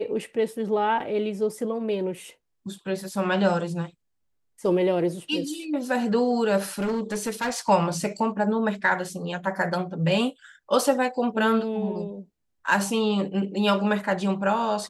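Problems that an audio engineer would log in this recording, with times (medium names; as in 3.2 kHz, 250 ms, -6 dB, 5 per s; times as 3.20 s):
6.79–7.60 s: clipped -22.5 dBFS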